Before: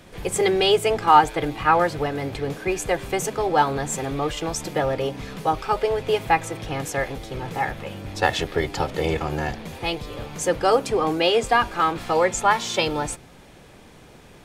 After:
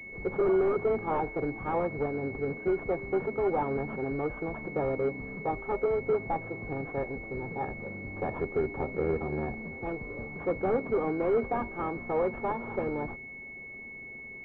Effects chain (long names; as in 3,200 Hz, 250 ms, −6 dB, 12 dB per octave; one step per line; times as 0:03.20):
hollow resonant body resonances 240/390 Hz, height 8 dB
wave folding −11.5 dBFS
switching amplifier with a slow clock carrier 2,200 Hz
level −8.5 dB